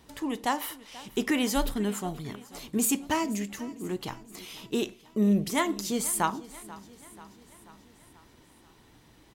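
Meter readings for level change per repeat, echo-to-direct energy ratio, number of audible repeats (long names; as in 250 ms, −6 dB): −4.5 dB, −17.0 dB, 4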